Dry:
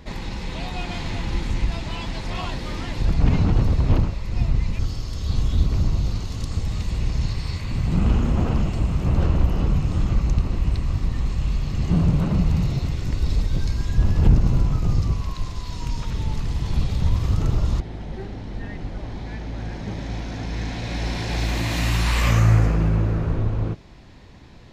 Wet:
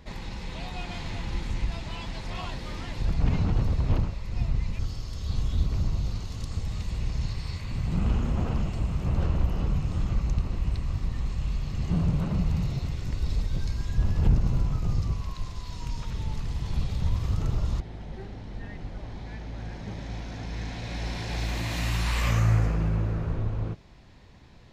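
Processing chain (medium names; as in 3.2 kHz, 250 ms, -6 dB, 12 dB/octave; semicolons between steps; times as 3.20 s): peaking EQ 300 Hz -3 dB 0.79 oct; trim -6 dB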